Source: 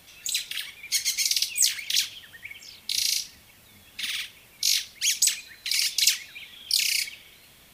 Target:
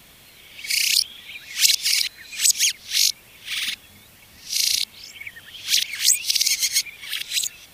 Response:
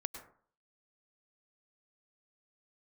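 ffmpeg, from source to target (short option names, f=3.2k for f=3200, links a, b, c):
-af "areverse,volume=4.5dB"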